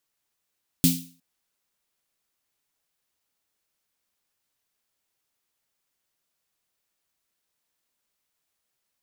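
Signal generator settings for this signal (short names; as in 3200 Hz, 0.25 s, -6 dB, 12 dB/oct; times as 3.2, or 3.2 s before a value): snare drum length 0.36 s, tones 170 Hz, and 260 Hz, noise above 2900 Hz, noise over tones -3 dB, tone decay 0.40 s, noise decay 0.40 s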